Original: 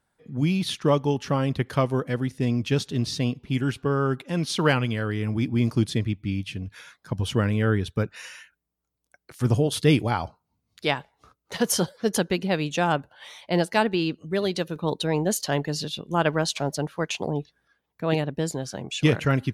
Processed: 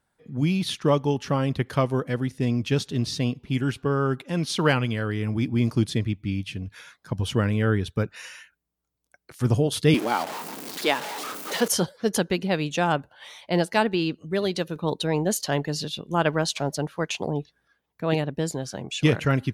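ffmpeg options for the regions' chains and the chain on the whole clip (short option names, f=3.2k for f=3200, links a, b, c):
-filter_complex "[0:a]asettb=1/sr,asplit=3[a][b][c];[a]atrim=end=9.944[d];[b]atrim=start=9.94:end=11.68,asetpts=PTS-STARTPTS,afade=t=in:d=0.004:c=qsin,afade=t=out:st=1.736:d=0.004:c=qsin,aeval=exprs='val(0)+0.5*0.0447*sgn(val(0))':c=same,highpass=f=230:w=0.5412,highpass=f=230:w=1.3066[e];[c]atrim=start=11.676[f];[d][e]acrossfade=d=0.004:c1=hsin:c2=qsin[g];[g][f]acrossfade=d=0.004:c1=qsin:c2=hsin"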